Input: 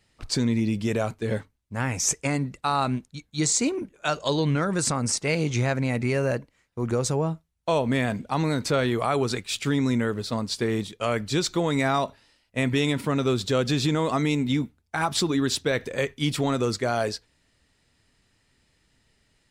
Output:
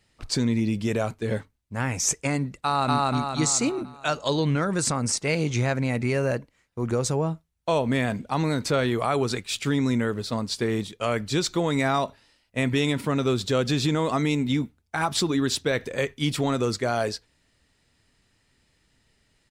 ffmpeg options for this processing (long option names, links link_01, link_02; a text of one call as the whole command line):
ffmpeg -i in.wav -filter_complex "[0:a]asplit=2[link_01][link_02];[link_02]afade=type=in:start_time=2.63:duration=0.01,afade=type=out:start_time=3.08:duration=0.01,aecho=0:1:240|480|720|960|1200|1440|1680:1|0.5|0.25|0.125|0.0625|0.03125|0.015625[link_03];[link_01][link_03]amix=inputs=2:normalize=0" out.wav